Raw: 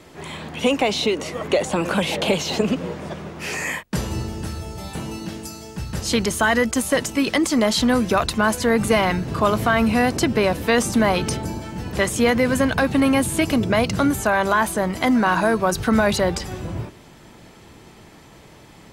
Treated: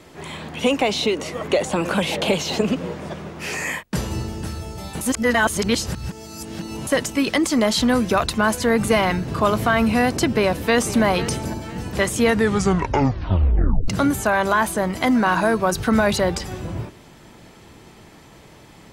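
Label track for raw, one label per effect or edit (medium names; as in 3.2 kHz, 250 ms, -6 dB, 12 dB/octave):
5.010000	6.870000	reverse
10.250000	11.030000	echo throw 500 ms, feedback 35%, level -14.5 dB
12.210000	12.210000	tape stop 1.67 s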